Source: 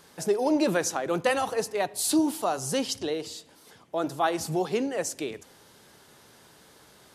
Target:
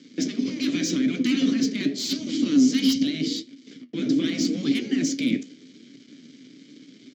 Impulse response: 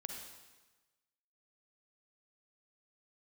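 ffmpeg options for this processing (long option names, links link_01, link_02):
-filter_complex "[0:a]apsyclip=29dB,afftfilt=real='re*lt(hypot(re,im),2.24)':imag='im*lt(hypot(re,im),2.24)':win_size=1024:overlap=0.75,aresample=16000,aeval=exprs='sgn(val(0))*max(abs(val(0))-0.0531,0)':channel_layout=same,aresample=44100,asplit=3[link_01][link_02][link_03];[link_01]bandpass=frequency=270:width_type=q:width=8,volume=0dB[link_04];[link_02]bandpass=frequency=2290:width_type=q:width=8,volume=-6dB[link_05];[link_03]bandpass=frequency=3010:width_type=q:width=8,volume=-9dB[link_06];[link_04][link_05][link_06]amix=inputs=3:normalize=0,highshelf=frequency=3600:width_type=q:width=1.5:gain=8.5,asplit=2[link_07][link_08];[link_08]adelay=81,lowpass=frequency=3000:poles=1,volume=-24dB,asplit=2[link_09][link_10];[link_10]adelay=81,lowpass=frequency=3000:poles=1,volume=0.18[link_11];[link_07][link_09][link_11]amix=inputs=3:normalize=0,flanger=delay=7.1:depth=9.7:regen=60:speed=0.84:shape=triangular,equalizer=frequency=150:width=0.34:gain=15,acrossover=split=110|1600[link_12][link_13][link_14];[link_12]acrusher=bits=2:mix=0:aa=0.5[link_15];[link_14]asoftclip=type=hard:threshold=-21.5dB[link_16];[link_15][link_13][link_16]amix=inputs=3:normalize=0,volume=-2.5dB"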